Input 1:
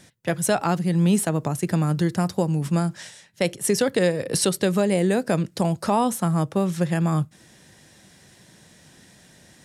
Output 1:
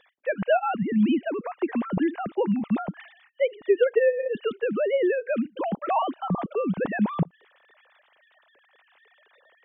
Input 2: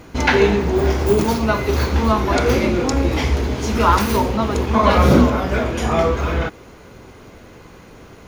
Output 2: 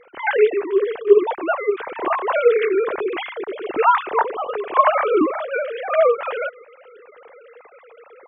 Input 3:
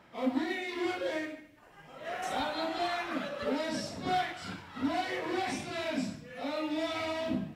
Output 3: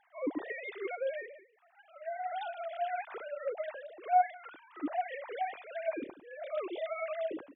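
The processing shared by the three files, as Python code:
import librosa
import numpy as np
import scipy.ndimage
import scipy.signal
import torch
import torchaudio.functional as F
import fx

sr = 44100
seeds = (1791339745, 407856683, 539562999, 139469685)

y = fx.sine_speech(x, sr)
y = fx.rider(y, sr, range_db=4, speed_s=2.0)
y = y * 10.0 ** (-3.5 / 20.0)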